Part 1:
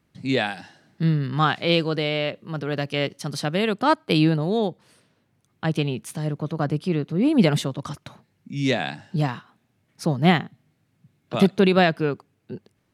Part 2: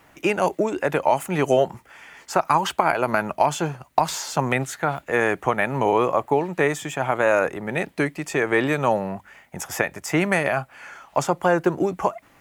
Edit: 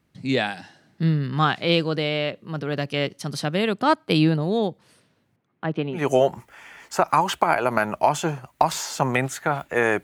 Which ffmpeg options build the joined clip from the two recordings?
-filter_complex "[0:a]asettb=1/sr,asplit=3[s0][s1][s2];[s0]atrim=end=5.364[s3];[s1]atrim=start=5.36:end=6.08,asetpts=PTS-STARTPTS,afade=t=in:d=0.004:c=qsin,afade=t=out:st=0.716:d=0.004:c=qsin,highpass=190,lowpass=2100[s4];[s2]atrim=start=6.076[s5];[s3][s4]acrossfade=d=0.004:c1=hsin:c2=qsin[s6];[s6][s5]acrossfade=d=0.004:c1=qsin:c2=hsin,apad=whole_dur=10.03,atrim=end=10.03,atrim=end=6.08,asetpts=PTS-STARTPTS[s7];[1:a]atrim=start=1.27:end=5.4,asetpts=PTS-STARTPTS[s8];[s7][s8]acrossfade=d=0.18:c1=tri:c2=tri"

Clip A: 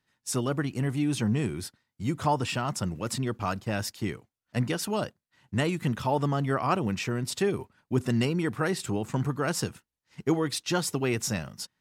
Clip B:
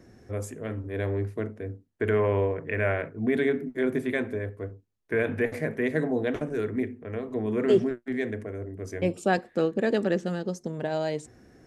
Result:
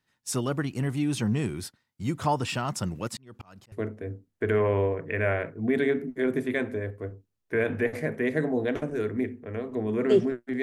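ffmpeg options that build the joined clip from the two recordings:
-filter_complex "[0:a]asplit=3[s0][s1][s2];[s0]afade=t=out:st=3.07:d=0.02[s3];[s1]aeval=exprs='val(0)*pow(10,-35*if(lt(mod(-4.1*n/s,1),2*abs(-4.1)/1000),1-mod(-4.1*n/s,1)/(2*abs(-4.1)/1000),(mod(-4.1*n/s,1)-2*abs(-4.1)/1000)/(1-2*abs(-4.1)/1000))/20)':c=same,afade=t=in:st=3.07:d=0.02,afade=t=out:st=3.72:d=0.02[s4];[s2]afade=t=in:st=3.72:d=0.02[s5];[s3][s4][s5]amix=inputs=3:normalize=0,apad=whole_dur=10.62,atrim=end=10.62,atrim=end=3.722[s6];[1:a]atrim=start=1.308:end=8.21[s7];[s6][s7]acrossfade=d=0.004:c1=hsin:c2=hsin"

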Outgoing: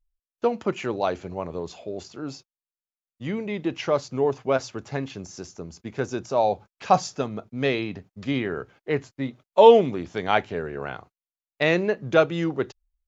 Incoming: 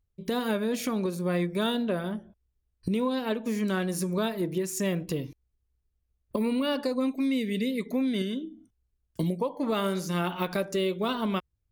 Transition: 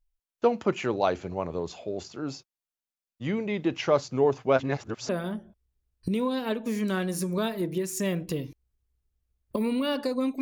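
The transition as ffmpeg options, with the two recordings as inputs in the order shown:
-filter_complex "[0:a]apad=whole_dur=10.41,atrim=end=10.41,asplit=2[s0][s1];[s0]atrim=end=4.602[s2];[s1]atrim=start=4.598:end=5.092,asetpts=PTS-STARTPTS,areverse[s3];[1:a]atrim=start=1.888:end=7.21[s4];[s2][s3]acrossfade=d=0.004:c1=hsin:c2=hsin[s5];[s5][s4]acrossfade=d=0.004:c1=hsin:c2=hsin"

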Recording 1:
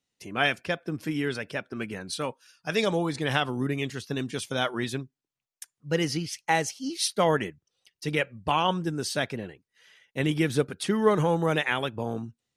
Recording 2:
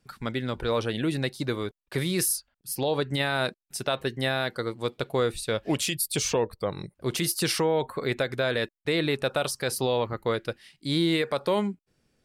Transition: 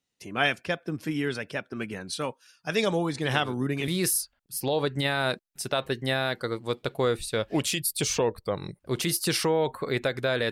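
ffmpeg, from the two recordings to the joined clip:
-filter_complex "[1:a]asplit=2[s0][s1];[0:a]apad=whole_dur=10.51,atrim=end=10.51,atrim=end=3.882[s2];[s1]atrim=start=2.028:end=8.66[s3];[s0]atrim=start=1.38:end=2.03,asetpts=PTS-STARTPTS,volume=0.299,afade=t=in:d=0.004:c=hsin,afade=t=out:st=0.646:d=0.004:c=hsin,adelay=3230[s4];[s2][s3]acrossfade=d=0.004:c1=hsin:c2=hsin[s5];[s5][s4]amix=inputs=2:normalize=0"

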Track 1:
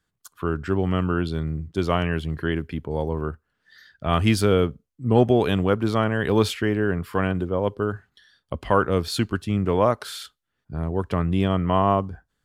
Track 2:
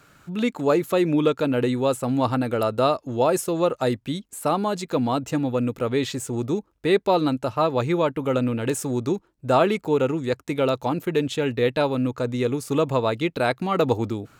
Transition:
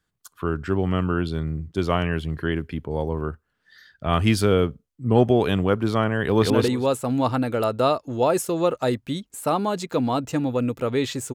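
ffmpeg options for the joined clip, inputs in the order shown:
-filter_complex "[0:a]apad=whole_dur=11.34,atrim=end=11.34,atrim=end=6.502[s0];[1:a]atrim=start=1.488:end=6.33[s1];[s0][s1]acrossfade=d=0.004:c1=hsin:c2=hsin,asplit=2[s2][s3];[s3]afade=t=in:st=6.23:d=0.01,afade=t=out:st=6.5:d=0.01,aecho=0:1:180|360|540:0.749894|0.112484|0.0168726[s4];[s2][s4]amix=inputs=2:normalize=0"

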